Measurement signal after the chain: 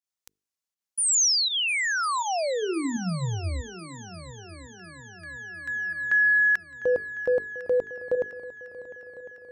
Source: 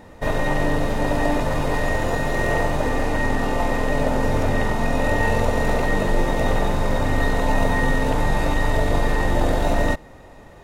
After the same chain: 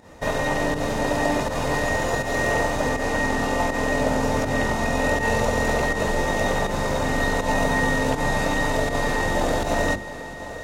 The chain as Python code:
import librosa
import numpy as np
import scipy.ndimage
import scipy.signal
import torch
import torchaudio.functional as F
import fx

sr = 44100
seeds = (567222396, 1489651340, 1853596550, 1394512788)

p1 = fx.volume_shaper(x, sr, bpm=81, per_beat=1, depth_db=-12, release_ms=112.0, shape='fast start')
p2 = fx.highpass(p1, sr, hz=62.0, slope=6)
p3 = fx.peak_eq(p2, sr, hz=6300.0, db=6.0, octaves=0.99)
p4 = fx.hum_notches(p3, sr, base_hz=50, count=9)
y = p4 + fx.echo_heads(p4, sr, ms=351, heads='second and third', feedback_pct=55, wet_db=-17, dry=0)